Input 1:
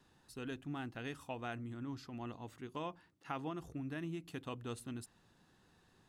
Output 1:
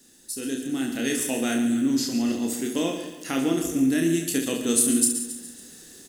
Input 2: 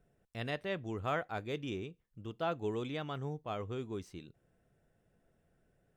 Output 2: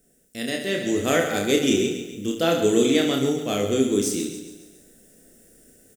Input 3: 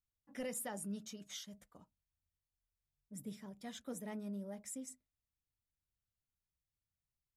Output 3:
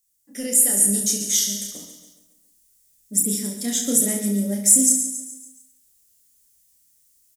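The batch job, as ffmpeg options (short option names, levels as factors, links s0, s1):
-filter_complex "[0:a]asplit=2[s0][s1];[s1]aecho=0:1:139|278|417|556|695:0.266|0.133|0.0665|0.0333|0.0166[s2];[s0][s2]amix=inputs=2:normalize=0,dynaudnorm=f=560:g=3:m=2.66,aexciter=amount=4.6:drive=9.3:freq=3400,equalizer=f=125:t=o:w=1:g=-8,equalizer=f=250:t=o:w=1:g=12,equalizer=f=500:t=o:w=1:g=6,equalizer=f=1000:t=o:w=1:g=-11,equalizer=f=2000:t=o:w=1:g=11,equalizer=f=4000:t=o:w=1:g=-8,equalizer=f=8000:t=o:w=1:g=4,asplit=2[s3][s4];[s4]aecho=0:1:30|69|119.7|185.6|271.3:0.631|0.398|0.251|0.158|0.1[s5];[s3][s5]amix=inputs=2:normalize=0,volume=1.12"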